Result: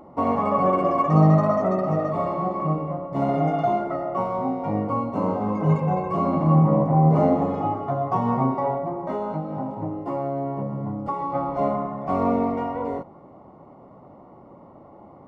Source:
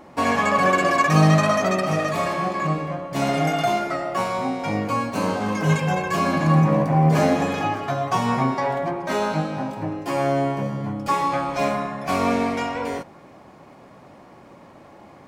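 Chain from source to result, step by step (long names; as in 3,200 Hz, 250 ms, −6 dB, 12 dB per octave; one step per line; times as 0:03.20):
Savitzky-Golay smoothing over 65 samples
0:08.75–0:11.35: downward compressor, threshold −24 dBFS, peak gain reduction 6.5 dB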